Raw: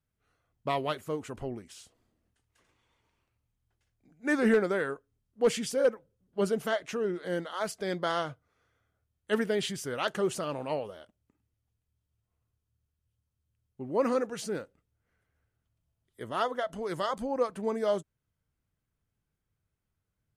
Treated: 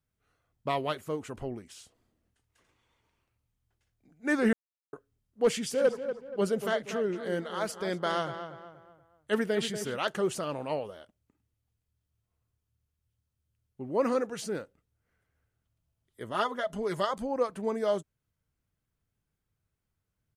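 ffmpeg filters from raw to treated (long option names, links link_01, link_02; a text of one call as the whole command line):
ffmpeg -i in.wav -filter_complex "[0:a]asplit=3[link_01][link_02][link_03];[link_01]afade=type=out:start_time=5.72:duration=0.02[link_04];[link_02]asplit=2[link_05][link_06];[link_06]adelay=238,lowpass=frequency=2400:poles=1,volume=-9dB,asplit=2[link_07][link_08];[link_08]adelay=238,lowpass=frequency=2400:poles=1,volume=0.4,asplit=2[link_09][link_10];[link_10]adelay=238,lowpass=frequency=2400:poles=1,volume=0.4,asplit=2[link_11][link_12];[link_12]adelay=238,lowpass=frequency=2400:poles=1,volume=0.4[link_13];[link_05][link_07][link_09][link_11][link_13]amix=inputs=5:normalize=0,afade=type=in:start_time=5.72:duration=0.02,afade=type=out:start_time=9.96:duration=0.02[link_14];[link_03]afade=type=in:start_time=9.96:duration=0.02[link_15];[link_04][link_14][link_15]amix=inputs=3:normalize=0,asettb=1/sr,asplit=3[link_16][link_17][link_18];[link_16]atrim=end=16.344[link_19];[link_17]atrim=start=16.34:end=17.05,asetpts=PTS-STARTPTS,afade=type=in:duration=0.004:curve=qsin,afade=type=out:start_time=0.706:duration=0.004:curve=qsin,aecho=1:1:4.9:0.65,atrim=end_sample=31311[link_20];[link_18]atrim=start=17.046[link_21];[link_19][link_20]acrossfade=duration=0.004:curve1=hsin:curve2=qsin[link_22];[link_22][link_21]acrossfade=duration=0.004:curve1=qsin:curve2=hsin,asplit=3[link_23][link_24][link_25];[link_23]atrim=end=4.53,asetpts=PTS-STARTPTS,afade=type=out:start_time=4.526:duration=0.004:curve=hsin[link_26];[link_24]atrim=start=4.53:end=4.93,asetpts=PTS-STARTPTS,volume=0[link_27];[link_25]atrim=start=4.93,asetpts=PTS-STARTPTS,afade=type=in:duration=0.004:curve=hsin[link_28];[link_26][link_27][link_28]concat=n=3:v=0:a=1" out.wav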